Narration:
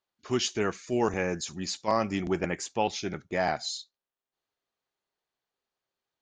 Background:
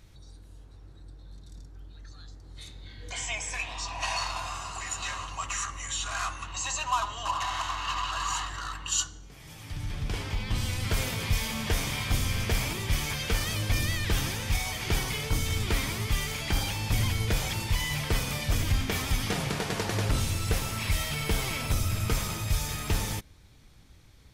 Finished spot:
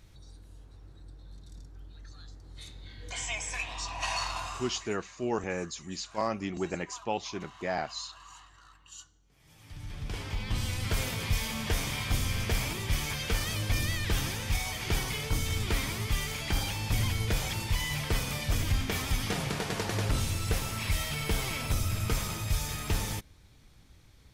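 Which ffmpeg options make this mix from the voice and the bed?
-filter_complex "[0:a]adelay=4300,volume=-4.5dB[a];[1:a]volume=17dB,afade=t=out:st=4.42:d=0.53:silence=0.112202,afade=t=in:st=9.24:d=1.24:silence=0.11885[b];[a][b]amix=inputs=2:normalize=0"

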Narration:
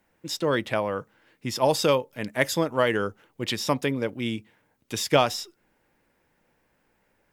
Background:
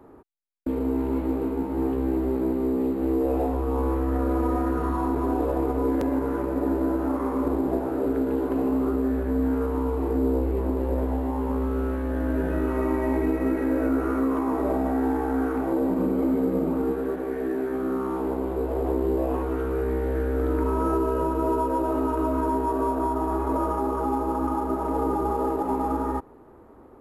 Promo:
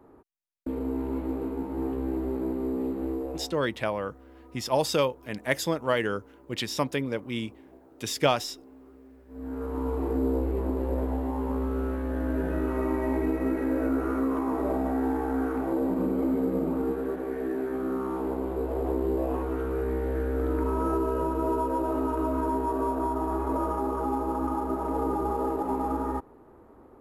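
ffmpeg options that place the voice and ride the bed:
-filter_complex "[0:a]adelay=3100,volume=-3dB[a];[1:a]volume=19.5dB,afade=t=out:st=2.98:d=0.6:silence=0.0749894,afade=t=in:st=9.28:d=0.64:silence=0.0595662[b];[a][b]amix=inputs=2:normalize=0"

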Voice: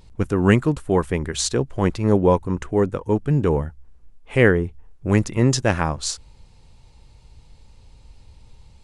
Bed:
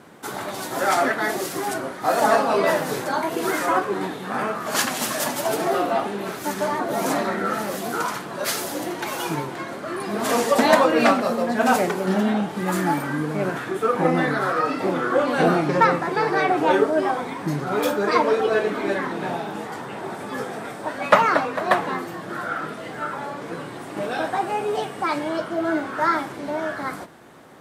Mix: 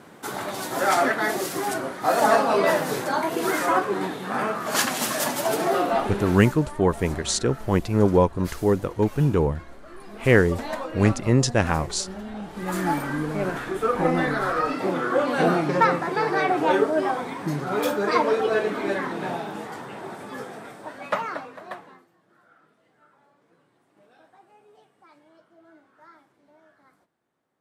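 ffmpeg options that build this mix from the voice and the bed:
-filter_complex "[0:a]adelay=5900,volume=-1.5dB[a];[1:a]volume=13dB,afade=t=out:st=6.21:d=0.37:silence=0.177828,afade=t=in:st=12.31:d=0.59:silence=0.211349,afade=t=out:st=19.27:d=2.81:silence=0.0354813[b];[a][b]amix=inputs=2:normalize=0"

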